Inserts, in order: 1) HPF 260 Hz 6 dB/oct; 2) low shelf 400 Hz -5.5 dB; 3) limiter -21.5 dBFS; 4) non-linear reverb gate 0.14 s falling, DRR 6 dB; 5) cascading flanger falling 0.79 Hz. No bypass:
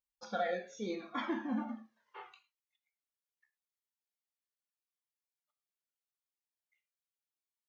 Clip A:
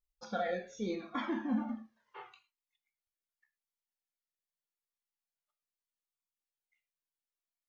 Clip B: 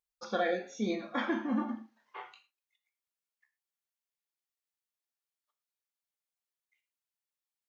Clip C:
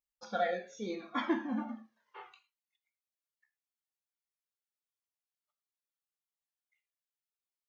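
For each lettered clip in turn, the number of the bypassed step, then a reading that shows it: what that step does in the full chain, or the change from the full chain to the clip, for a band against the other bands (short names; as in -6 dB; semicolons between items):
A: 1, 250 Hz band +3.0 dB; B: 5, 1 kHz band -2.5 dB; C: 3, crest factor change +2.5 dB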